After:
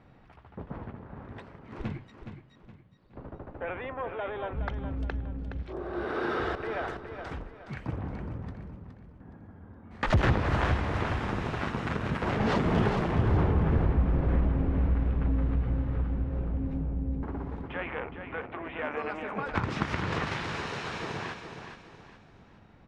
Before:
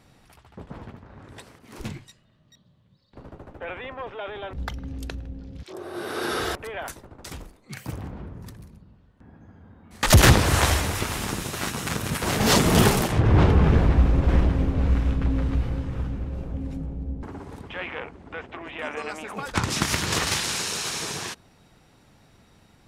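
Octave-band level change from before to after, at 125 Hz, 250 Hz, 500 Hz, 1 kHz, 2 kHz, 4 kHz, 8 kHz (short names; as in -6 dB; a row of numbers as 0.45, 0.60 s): -5.5 dB, -5.0 dB, -4.5 dB, -4.5 dB, -6.0 dB, -15.0 dB, under -25 dB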